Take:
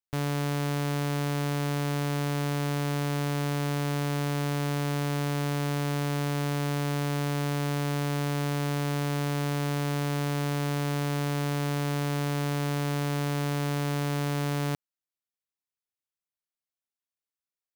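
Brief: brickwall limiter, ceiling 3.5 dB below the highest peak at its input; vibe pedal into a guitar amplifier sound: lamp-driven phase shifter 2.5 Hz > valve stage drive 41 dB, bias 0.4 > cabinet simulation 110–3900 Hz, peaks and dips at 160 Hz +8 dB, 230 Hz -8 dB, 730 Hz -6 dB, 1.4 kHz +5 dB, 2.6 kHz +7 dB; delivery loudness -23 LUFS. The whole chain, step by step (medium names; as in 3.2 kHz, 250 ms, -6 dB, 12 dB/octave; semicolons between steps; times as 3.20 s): peak limiter -27.5 dBFS; lamp-driven phase shifter 2.5 Hz; valve stage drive 41 dB, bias 0.4; cabinet simulation 110–3900 Hz, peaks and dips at 160 Hz +8 dB, 230 Hz -8 dB, 730 Hz -6 dB, 1.4 kHz +5 dB, 2.6 kHz +7 dB; trim +20.5 dB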